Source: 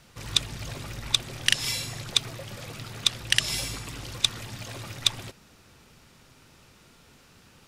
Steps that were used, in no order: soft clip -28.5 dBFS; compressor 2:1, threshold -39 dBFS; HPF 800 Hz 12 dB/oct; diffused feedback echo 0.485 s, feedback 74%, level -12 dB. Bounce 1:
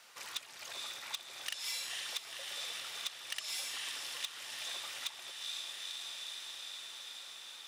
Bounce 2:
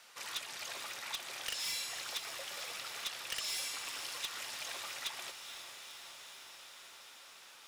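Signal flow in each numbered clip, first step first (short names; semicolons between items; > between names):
diffused feedback echo > compressor > soft clip > HPF; HPF > soft clip > diffused feedback echo > compressor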